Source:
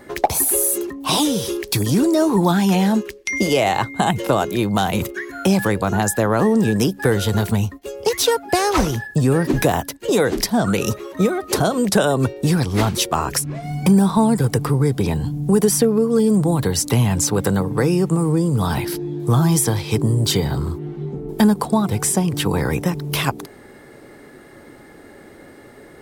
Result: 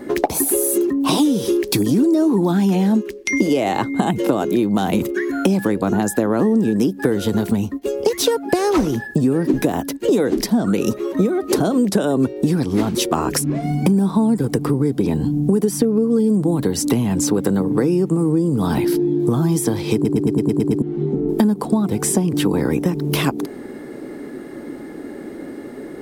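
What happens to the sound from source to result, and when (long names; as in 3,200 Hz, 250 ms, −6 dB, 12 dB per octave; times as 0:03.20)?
0:19.94: stutter in place 0.11 s, 8 plays
whole clip: parametric band 280 Hz +13 dB 1.5 octaves; downward compressor 4 to 1, threshold −17 dBFS; parametric band 100 Hz −4.5 dB 0.84 octaves; level +2 dB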